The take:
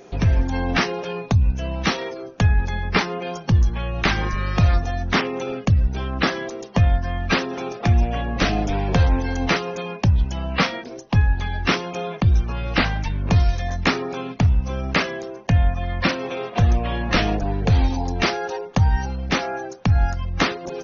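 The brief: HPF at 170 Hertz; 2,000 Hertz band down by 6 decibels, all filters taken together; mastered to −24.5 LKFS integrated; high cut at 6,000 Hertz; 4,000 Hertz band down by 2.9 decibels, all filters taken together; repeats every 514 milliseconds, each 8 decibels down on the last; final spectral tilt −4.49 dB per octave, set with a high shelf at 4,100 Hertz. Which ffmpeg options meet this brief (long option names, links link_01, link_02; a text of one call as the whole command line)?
ffmpeg -i in.wav -af "highpass=170,lowpass=6000,equalizer=frequency=2000:width_type=o:gain=-8,equalizer=frequency=4000:width_type=o:gain=-3.5,highshelf=frequency=4100:gain=6,aecho=1:1:514|1028|1542|2056|2570:0.398|0.159|0.0637|0.0255|0.0102,volume=2dB" out.wav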